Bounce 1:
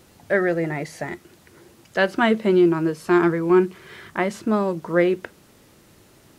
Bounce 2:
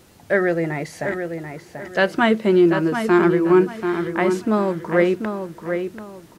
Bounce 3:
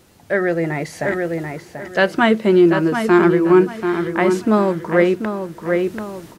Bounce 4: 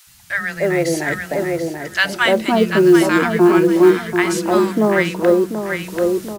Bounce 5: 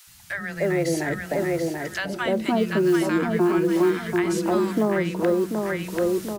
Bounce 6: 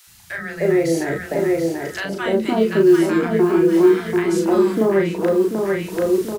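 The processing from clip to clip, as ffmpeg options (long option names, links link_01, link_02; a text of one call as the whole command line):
ffmpeg -i in.wav -filter_complex "[0:a]asplit=2[link_01][link_02];[link_02]adelay=737,lowpass=frequency=3600:poles=1,volume=-7dB,asplit=2[link_03][link_04];[link_04]adelay=737,lowpass=frequency=3600:poles=1,volume=0.3,asplit=2[link_05][link_06];[link_06]adelay=737,lowpass=frequency=3600:poles=1,volume=0.3,asplit=2[link_07][link_08];[link_08]adelay=737,lowpass=frequency=3600:poles=1,volume=0.3[link_09];[link_01][link_03][link_05][link_07][link_09]amix=inputs=5:normalize=0,volume=1.5dB" out.wav
ffmpeg -i in.wav -af "dynaudnorm=framelen=350:gausssize=3:maxgain=11.5dB,volume=-1dB" out.wav
ffmpeg -i in.wav -filter_complex "[0:a]highshelf=frequency=3400:gain=9.5,acrossover=split=180|1000[link_01][link_02][link_03];[link_01]adelay=70[link_04];[link_02]adelay=300[link_05];[link_04][link_05][link_03]amix=inputs=3:normalize=0,acrusher=bits=8:mode=log:mix=0:aa=0.000001,volume=2dB" out.wav
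ffmpeg -i in.wav -filter_complex "[0:a]acrossover=split=310|700[link_01][link_02][link_03];[link_01]acompressor=threshold=-21dB:ratio=4[link_04];[link_02]acompressor=threshold=-24dB:ratio=4[link_05];[link_03]acompressor=threshold=-28dB:ratio=4[link_06];[link_04][link_05][link_06]amix=inputs=3:normalize=0,volume=-2dB" out.wav
ffmpeg -i in.wav -filter_complex "[0:a]equalizer=frequency=400:width_type=o:width=0.4:gain=7.5,asplit=2[link_01][link_02];[link_02]adelay=36,volume=-3dB[link_03];[link_01][link_03]amix=inputs=2:normalize=0" out.wav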